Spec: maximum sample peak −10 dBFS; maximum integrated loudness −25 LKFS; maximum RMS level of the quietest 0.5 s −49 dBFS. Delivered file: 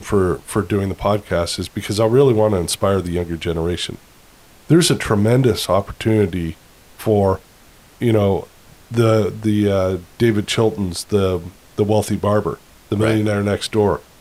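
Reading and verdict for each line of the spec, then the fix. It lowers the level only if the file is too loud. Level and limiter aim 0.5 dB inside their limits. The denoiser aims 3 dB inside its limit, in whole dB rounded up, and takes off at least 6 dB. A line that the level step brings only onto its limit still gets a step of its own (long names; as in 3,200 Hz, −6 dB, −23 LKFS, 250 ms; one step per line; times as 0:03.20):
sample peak −4.0 dBFS: out of spec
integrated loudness −18.5 LKFS: out of spec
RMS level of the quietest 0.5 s −47 dBFS: out of spec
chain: level −7 dB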